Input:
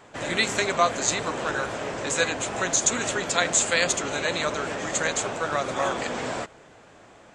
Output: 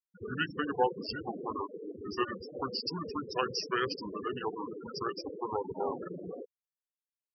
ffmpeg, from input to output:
-af "afftfilt=real='re*gte(hypot(re,im),0.112)':imag='im*gte(hypot(re,im),0.112)':win_size=1024:overlap=0.75,lowpass=f=3.1k:p=1,asetrate=32097,aresample=44100,atempo=1.37395,volume=-6dB"

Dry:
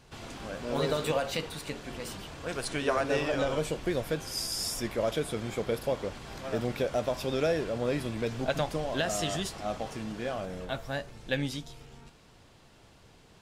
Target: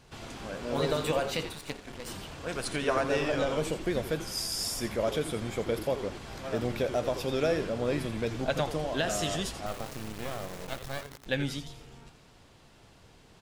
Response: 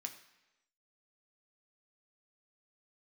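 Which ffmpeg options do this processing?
-filter_complex "[0:a]asettb=1/sr,asplit=3[a][b][c];[a]atrim=end=9.664[d];[b]atrim=start=9.66:end=11.26,asetpts=PTS-STARTPTS,afade=t=in:d=0.004:c=qsin,afade=t=out:st=1.596:d=0.004:c=qsin,acrusher=bits=4:dc=4:mix=0:aa=0.000001[e];[c]atrim=start=11.256[f];[d][e]acrossfade=d=0.004:c1=hsin:c2=qsin[g];[g][f]acrossfade=d=0.004:c1=qsin:c2=hsin,asplit=4[h][i][j][k];[i]adelay=84,afreqshift=-140,volume=-11dB[l];[j]adelay=168,afreqshift=-280,volume=-20.9dB[m];[k]adelay=252,afreqshift=-420,volume=-30.8dB[n];[h][l][m][n]amix=inputs=4:normalize=0,asplit=3[o][p][q];[o]afade=t=out:st=1.52:d=0.02[r];[p]aeval=exprs='0.0841*(cos(1*acos(clip(val(0)/0.0841,-1,1)))-cos(1*PI/2))+0.0299*(cos(2*acos(clip(val(0)/0.0841,-1,1)))-cos(2*PI/2))+0.0119*(cos(3*acos(clip(val(0)/0.0841,-1,1)))-cos(3*PI/2))+0.0075*(cos(8*acos(clip(val(0)/0.0841,-1,1)))-cos(8*PI/2))':c=same,afade=t=in:st=1.52:d=0.02,afade=t=out:st=2.06:d=0.02[s];[q]afade=t=in:st=2.06:d=0.02[t];[r][s][t]amix=inputs=3:normalize=0"

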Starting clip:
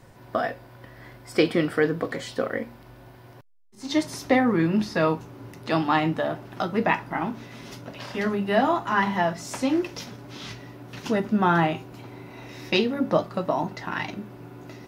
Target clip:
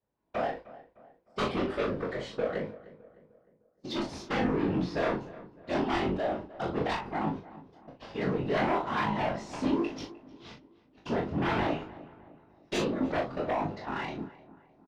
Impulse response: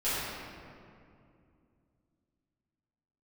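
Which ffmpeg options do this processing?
-filter_complex "[0:a]highpass=f=250:p=1,agate=range=-31dB:threshold=-37dB:ratio=16:detection=peak,lowpass=3.3k,equalizer=f=1.7k:t=o:w=1.6:g=-7.5,aeval=exprs='0.316*sin(PI/2*3.55*val(0)/0.316)':c=same,afftfilt=real='hypot(re,im)*cos(2*PI*random(0))':imag='hypot(re,im)*sin(2*PI*random(1))':win_size=512:overlap=0.75,flanger=delay=19.5:depth=4.4:speed=1.1,asplit=2[a][b];[b]asoftclip=type=tanh:threshold=-35dB,volume=-9.5dB[c];[a][c]amix=inputs=2:normalize=0,asplit=2[d][e];[e]adelay=38,volume=-6dB[f];[d][f]amix=inputs=2:normalize=0,asplit=2[g][h];[h]adelay=305,lowpass=f=1.9k:p=1,volume=-17.5dB,asplit=2[i][j];[j]adelay=305,lowpass=f=1.9k:p=1,volume=0.47,asplit=2[k][l];[l]adelay=305,lowpass=f=1.9k:p=1,volume=0.47,asplit=2[m][n];[n]adelay=305,lowpass=f=1.9k:p=1,volume=0.47[o];[i][k][m][o]amix=inputs=4:normalize=0[p];[g][p]amix=inputs=2:normalize=0,volume=-7dB"

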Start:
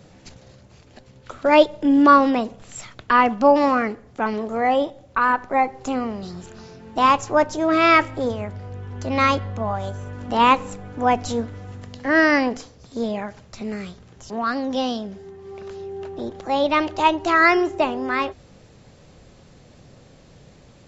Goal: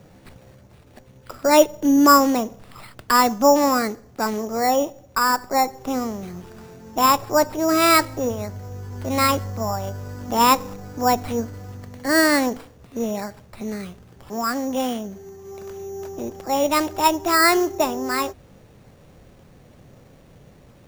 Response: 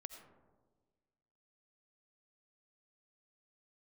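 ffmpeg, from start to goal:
-af "highshelf=f=5.5k:g=-12,acrusher=samples=7:mix=1:aa=0.000001"

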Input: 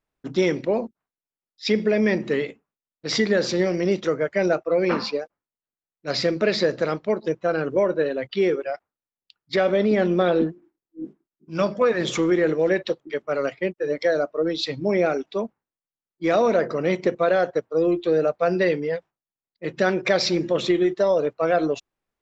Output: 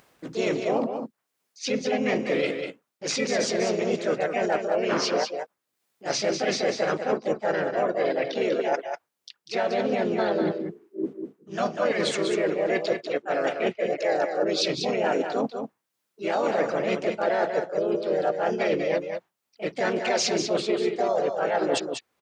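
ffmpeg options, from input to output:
-filter_complex "[0:a]asplit=4[a][b][c][d];[b]asetrate=29433,aresample=44100,atempo=1.49831,volume=-14dB[e];[c]asetrate=52444,aresample=44100,atempo=0.840896,volume=-1dB[f];[d]asetrate=55563,aresample=44100,atempo=0.793701,volume=-6dB[g];[a][e][f][g]amix=inputs=4:normalize=0,areverse,acompressor=threshold=-30dB:ratio=6,areverse,lowshelf=f=190:g=-7,acompressor=mode=upward:threshold=-53dB:ratio=2.5,highpass=91,asplit=2[h][i];[i]aecho=0:1:194:0.473[j];[h][j]amix=inputs=2:normalize=0,volume=7.5dB"

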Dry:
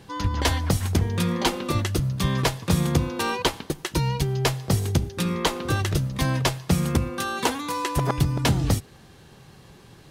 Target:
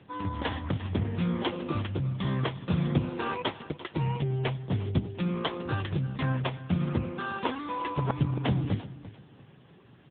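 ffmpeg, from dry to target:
-af "aecho=1:1:346|692|1038:0.158|0.0412|0.0107,volume=-3.5dB" -ar 8000 -c:a libopencore_amrnb -b:a 6700

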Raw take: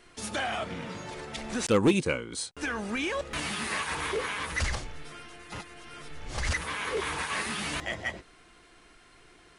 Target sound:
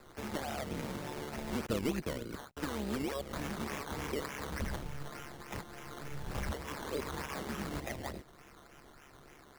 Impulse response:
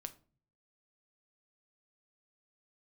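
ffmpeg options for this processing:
-filter_complex "[0:a]tremolo=f=140:d=0.824,acrossover=split=290|610|2500[a][b][c][d];[a]acompressor=threshold=-39dB:ratio=4[e];[b]acompressor=threshold=-44dB:ratio=4[f];[c]acompressor=threshold=-48dB:ratio=4[g];[d]acompressor=threshold=-55dB:ratio=4[h];[e][f][g][h]amix=inputs=4:normalize=0,acrusher=samples=14:mix=1:aa=0.000001:lfo=1:lforange=8.4:lforate=3.4,volume=3.5dB"

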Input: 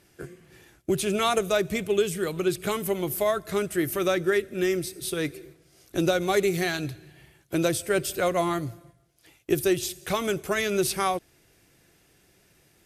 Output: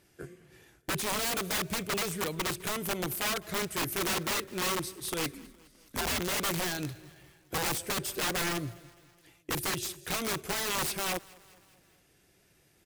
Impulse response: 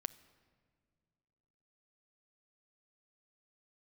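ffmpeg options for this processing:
-filter_complex "[0:a]aeval=exprs='0.316*(cos(1*acos(clip(val(0)/0.316,-1,1)))-cos(1*PI/2))+0.00708*(cos(7*acos(clip(val(0)/0.316,-1,1)))-cos(7*PI/2))':c=same,aeval=exprs='(mod(13.3*val(0)+1,2)-1)/13.3':c=same,asettb=1/sr,asplit=3[a][b][c];[a]atrim=end=5.334[d];[b]atrim=start=5.33:end=6.2,asetpts=PTS-STARTPTS,afade=t=in:d=0.004:c=qsin,afade=t=out:st=0.866:d=0.004:c=qsin,afreqshift=-110[e];[c]atrim=start=6.196[f];[d][e]acrossfade=d=0.004:c1=hsin:c2=qsin[g];[g][f]acrossfade=d=0.004:c1=qsin:c2=hsin,asplit=2[h][i];[i]aecho=0:1:207|414|621|828:0.0668|0.0388|0.0225|0.013[j];[h][j]amix=inputs=2:normalize=0,volume=-3dB"

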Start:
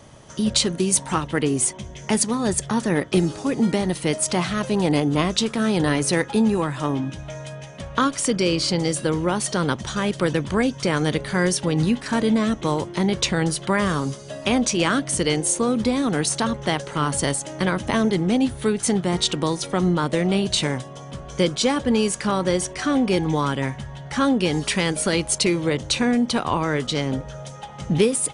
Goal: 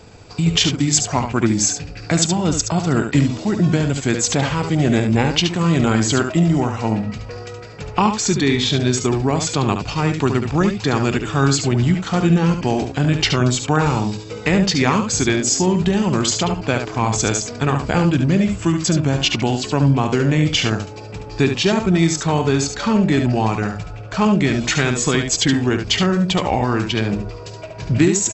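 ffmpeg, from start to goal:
-af "asetrate=34006,aresample=44100,atempo=1.29684,aecho=1:1:72:0.447,volume=3.5dB"

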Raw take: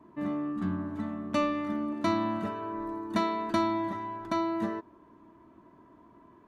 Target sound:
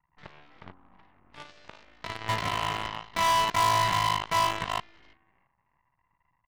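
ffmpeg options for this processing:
-filter_complex "[0:a]lowshelf=f=220:t=q:w=3:g=9,alimiter=limit=-20.5dB:level=0:latency=1:release=108,asplit=5[a][b][c][d][e];[b]adelay=334,afreqshift=53,volume=-6dB[f];[c]adelay=668,afreqshift=106,volume=-16.2dB[g];[d]adelay=1002,afreqshift=159,volume=-26.3dB[h];[e]adelay=1336,afreqshift=212,volume=-36.5dB[i];[a][f][g][h][i]amix=inputs=5:normalize=0,asettb=1/sr,asplit=3[j][k][l];[j]atrim=end=0.714[m];[k]atrim=start=0.71:end=2.29,asetpts=PTS-STARTPTS,afade=t=in:d=0.004:c=qsin,afade=t=out:st=1.576:d=0.004:c=qsin,acompressor=threshold=-33dB:ratio=2.5[n];[l]atrim=start=2.286[o];[m][n]acrossfade=d=0.004:c1=hsin:c2=qsin[p];[p][o]acrossfade=d=0.004:c1=qsin:c2=hsin,firequalizer=gain_entry='entry(130,0);entry(250,-24);entry(440,-8);entry(900,14);entry(1300,0);entry(2000,11);entry(4900,-8)':delay=0.05:min_phase=1,afwtdn=0.00562,aeval=exprs='0.075*(cos(1*acos(clip(val(0)/0.075,-1,1)))-cos(1*PI/2))+0.0376*(cos(3*acos(clip(val(0)/0.075,-1,1)))-cos(3*PI/2))+0.00841*(cos(5*acos(clip(val(0)/0.075,-1,1)))-cos(5*PI/2))+0.00119*(cos(7*acos(clip(val(0)/0.075,-1,1)))-cos(7*PI/2))+0.00168*(cos(8*acos(clip(val(0)/0.075,-1,1)))-cos(8*PI/2))':c=same"

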